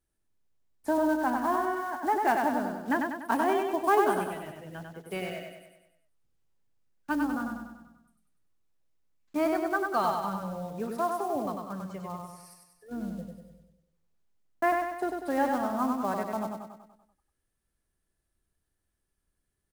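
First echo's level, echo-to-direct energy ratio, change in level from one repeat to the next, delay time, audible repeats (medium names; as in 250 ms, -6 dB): -4.0 dB, -2.5 dB, -5.5 dB, 97 ms, 6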